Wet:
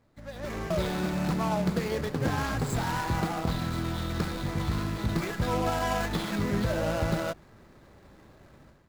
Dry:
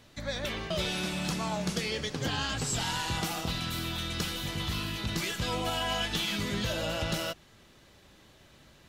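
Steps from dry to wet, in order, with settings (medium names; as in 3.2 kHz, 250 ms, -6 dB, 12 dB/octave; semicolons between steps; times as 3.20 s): median filter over 15 samples; level rider gain up to 13.5 dB; trim -8 dB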